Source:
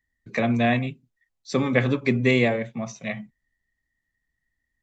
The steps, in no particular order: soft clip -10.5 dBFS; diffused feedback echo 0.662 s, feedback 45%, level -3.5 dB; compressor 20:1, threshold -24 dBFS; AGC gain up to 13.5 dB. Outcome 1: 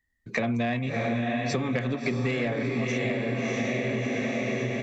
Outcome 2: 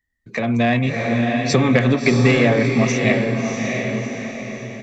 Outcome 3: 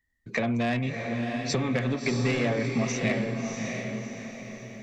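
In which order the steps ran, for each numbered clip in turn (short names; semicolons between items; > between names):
diffused feedback echo > soft clip > AGC > compressor; soft clip > compressor > diffused feedback echo > AGC; AGC > soft clip > compressor > diffused feedback echo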